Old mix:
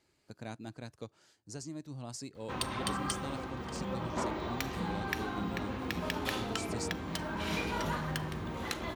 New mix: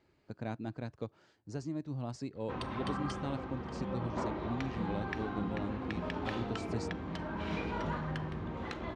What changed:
speech +5.5 dB; master: add tape spacing loss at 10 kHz 25 dB

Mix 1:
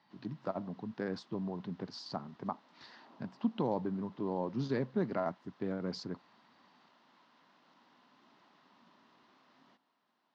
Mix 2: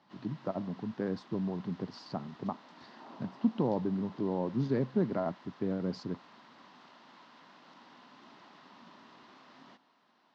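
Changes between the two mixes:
speech: add tilt shelf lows +5 dB, about 820 Hz; background +9.5 dB

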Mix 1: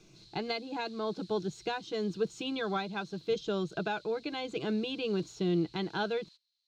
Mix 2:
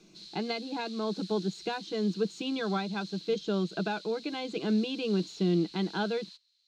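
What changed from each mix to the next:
background +10.0 dB; master: add resonant low shelf 150 Hz -8 dB, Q 3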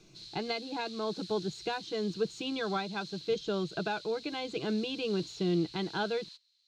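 master: add resonant low shelf 150 Hz +8 dB, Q 3

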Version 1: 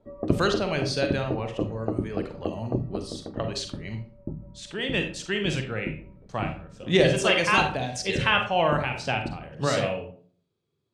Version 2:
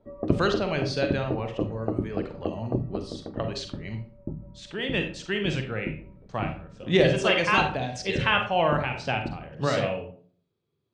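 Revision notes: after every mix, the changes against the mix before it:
speech: add distance through air 85 m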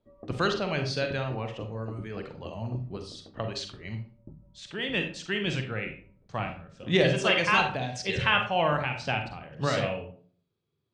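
background -11.5 dB; master: add peaking EQ 410 Hz -3.5 dB 2.2 oct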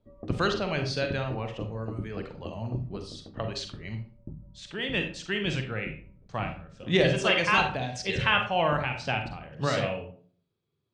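background: add bass shelf 290 Hz +8.5 dB

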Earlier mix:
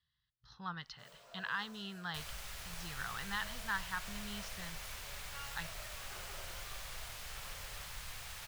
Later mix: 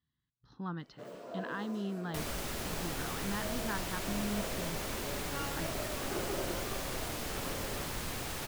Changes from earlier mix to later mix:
speech -10.0 dB; second sound: add treble shelf 3.8 kHz +8 dB; master: remove amplifier tone stack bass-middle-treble 10-0-10

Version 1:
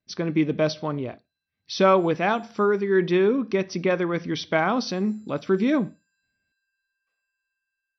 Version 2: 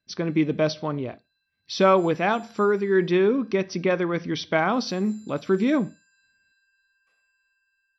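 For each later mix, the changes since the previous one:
background +10.5 dB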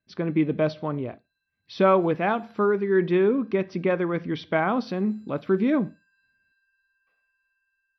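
background: remove low-pass 7.4 kHz 24 dB/octave; master: add distance through air 290 m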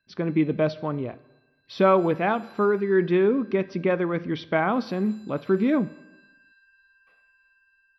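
background +11.0 dB; reverb: on, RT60 1.1 s

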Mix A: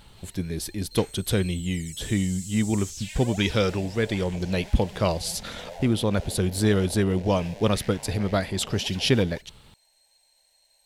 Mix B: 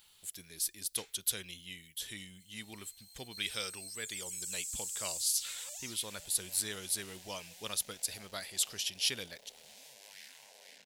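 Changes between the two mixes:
background: entry +2.40 s; master: add pre-emphasis filter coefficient 0.97

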